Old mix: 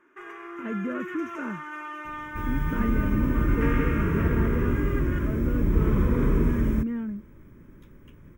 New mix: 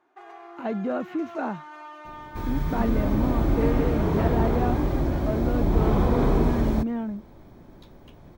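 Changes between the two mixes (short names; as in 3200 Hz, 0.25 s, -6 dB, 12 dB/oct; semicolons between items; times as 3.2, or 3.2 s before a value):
first sound -10.0 dB; master: remove fixed phaser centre 1800 Hz, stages 4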